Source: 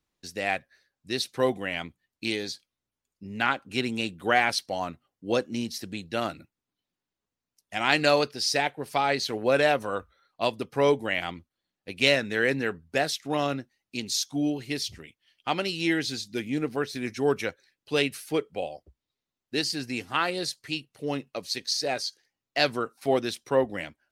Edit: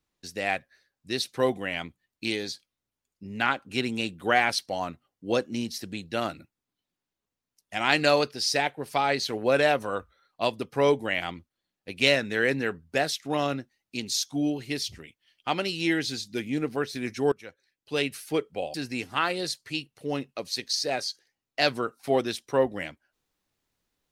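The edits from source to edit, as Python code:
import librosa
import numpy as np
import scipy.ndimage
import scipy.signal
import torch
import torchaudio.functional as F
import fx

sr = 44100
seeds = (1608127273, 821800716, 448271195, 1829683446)

y = fx.edit(x, sr, fx.fade_in_from(start_s=17.32, length_s=0.92, floor_db=-22.5),
    fx.cut(start_s=18.74, length_s=0.98), tone=tone)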